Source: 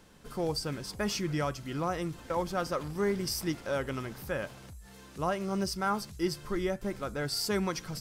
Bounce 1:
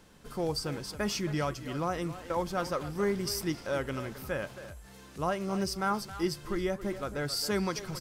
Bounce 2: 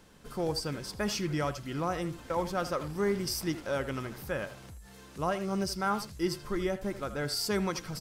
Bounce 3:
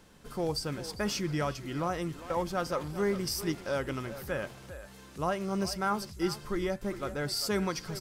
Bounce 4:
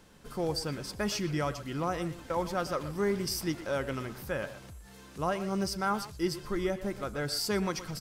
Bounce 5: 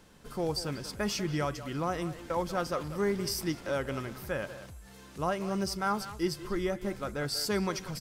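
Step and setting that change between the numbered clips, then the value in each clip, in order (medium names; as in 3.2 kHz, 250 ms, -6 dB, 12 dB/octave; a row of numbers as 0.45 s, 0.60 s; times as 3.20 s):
speakerphone echo, time: 270 ms, 80 ms, 400 ms, 120 ms, 190 ms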